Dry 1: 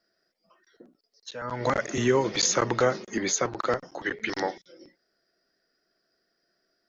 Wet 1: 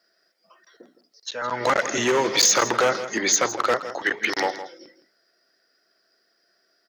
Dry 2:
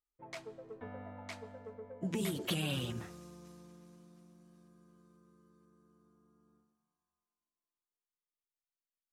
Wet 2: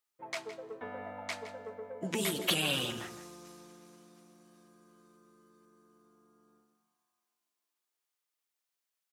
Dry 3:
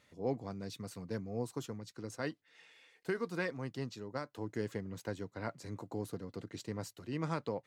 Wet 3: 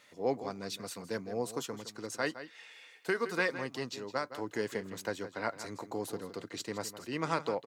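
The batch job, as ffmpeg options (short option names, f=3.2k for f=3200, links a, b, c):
-filter_complex "[0:a]volume=20dB,asoftclip=hard,volume=-20dB,highpass=f=590:p=1,asplit=2[a][b];[b]adelay=163.3,volume=-12dB,highshelf=f=4k:g=-3.67[c];[a][c]amix=inputs=2:normalize=0,volume=8.5dB"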